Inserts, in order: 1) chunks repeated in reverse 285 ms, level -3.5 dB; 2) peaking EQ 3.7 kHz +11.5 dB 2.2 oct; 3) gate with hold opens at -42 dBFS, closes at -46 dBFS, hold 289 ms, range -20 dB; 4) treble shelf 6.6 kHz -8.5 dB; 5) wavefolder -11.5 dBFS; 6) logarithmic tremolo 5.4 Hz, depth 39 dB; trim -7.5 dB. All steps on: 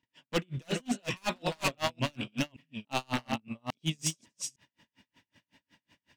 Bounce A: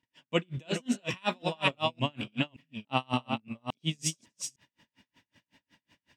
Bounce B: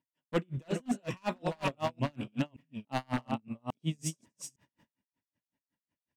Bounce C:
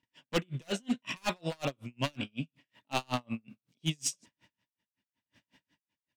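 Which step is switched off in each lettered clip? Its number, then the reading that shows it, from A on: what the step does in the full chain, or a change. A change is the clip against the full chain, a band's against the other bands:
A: 5, distortion -3 dB; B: 2, 4 kHz band -8.5 dB; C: 1, 2 kHz band -1.5 dB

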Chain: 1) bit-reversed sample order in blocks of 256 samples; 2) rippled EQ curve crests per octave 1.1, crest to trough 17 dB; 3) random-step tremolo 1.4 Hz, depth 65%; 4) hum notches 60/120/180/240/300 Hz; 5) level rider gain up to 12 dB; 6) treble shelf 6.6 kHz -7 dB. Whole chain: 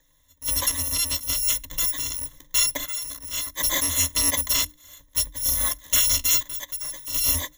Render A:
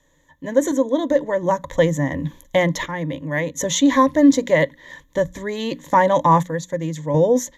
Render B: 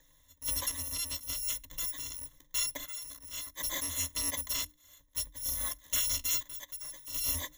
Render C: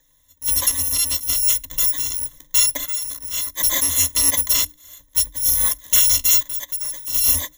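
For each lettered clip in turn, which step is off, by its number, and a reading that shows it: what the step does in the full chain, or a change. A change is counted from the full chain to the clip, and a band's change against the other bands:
1, 8 kHz band -25.0 dB; 5, loudness change -11.0 LU; 6, 8 kHz band +4.5 dB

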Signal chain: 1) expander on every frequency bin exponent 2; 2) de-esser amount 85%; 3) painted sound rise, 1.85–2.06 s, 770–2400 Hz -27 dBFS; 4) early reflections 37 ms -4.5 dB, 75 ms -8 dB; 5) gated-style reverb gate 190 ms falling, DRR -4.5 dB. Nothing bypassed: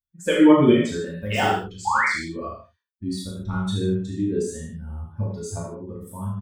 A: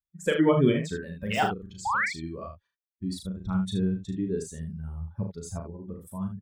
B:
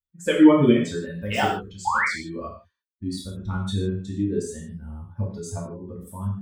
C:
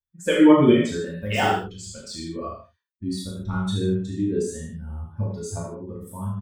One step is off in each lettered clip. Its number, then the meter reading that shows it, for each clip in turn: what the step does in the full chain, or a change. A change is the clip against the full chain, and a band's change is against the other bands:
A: 5, echo-to-direct 7.0 dB to -3.0 dB; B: 4, echo-to-direct 7.0 dB to 4.5 dB; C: 3, 2 kHz band -4.5 dB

